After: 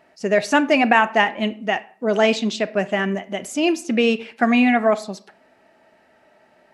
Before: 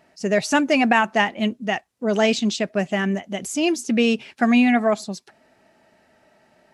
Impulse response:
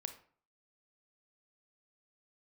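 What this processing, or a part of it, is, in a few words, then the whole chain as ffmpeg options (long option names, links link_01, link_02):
filtered reverb send: -filter_complex "[0:a]asplit=2[link_01][link_02];[link_02]highpass=230,lowpass=3900[link_03];[1:a]atrim=start_sample=2205[link_04];[link_03][link_04]afir=irnorm=-1:irlink=0,volume=1.5dB[link_05];[link_01][link_05]amix=inputs=2:normalize=0,volume=-2.5dB"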